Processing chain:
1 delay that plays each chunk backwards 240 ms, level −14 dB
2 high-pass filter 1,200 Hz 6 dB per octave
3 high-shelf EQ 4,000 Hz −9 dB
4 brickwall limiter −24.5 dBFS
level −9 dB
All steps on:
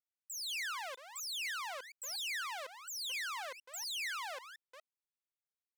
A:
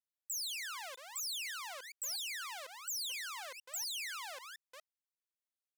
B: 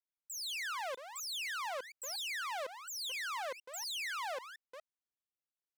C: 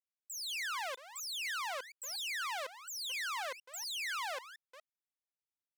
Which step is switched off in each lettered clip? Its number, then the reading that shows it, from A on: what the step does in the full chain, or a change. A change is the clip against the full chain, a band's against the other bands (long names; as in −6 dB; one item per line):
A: 3, 8 kHz band +7.0 dB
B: 2, 500 Hz band +7.0 dB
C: 4, change in crest factor +3.0 dB